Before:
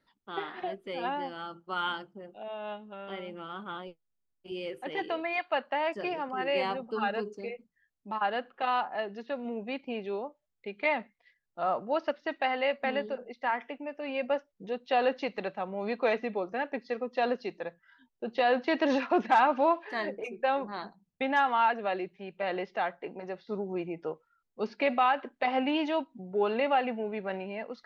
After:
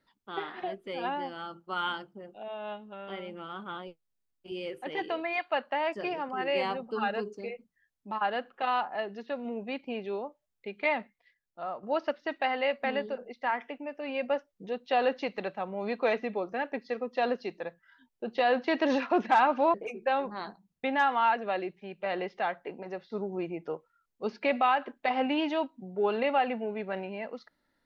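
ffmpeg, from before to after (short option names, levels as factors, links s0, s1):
-filter_complex "[0:a]asplit=3[s0][s1][s2];[s0]atrim=end=11.83,asetpts=PTS-STARTPTS,afade=t=out:st=11:d=0.83:silence=0.316228[s3];[s1]atrim=start=11.83:end=19.742,asetpts=PTS-STARTPTS,afade=t=in:d=0.004:c=hsin:silence=0.316228[s4];[s2]atrim=start=20.108[s5];[s3][s4]concat=n=2:v=0:a=1[s6];[s6][s5]acrossfade=d=0.004:c1=hsin:c2=hsin"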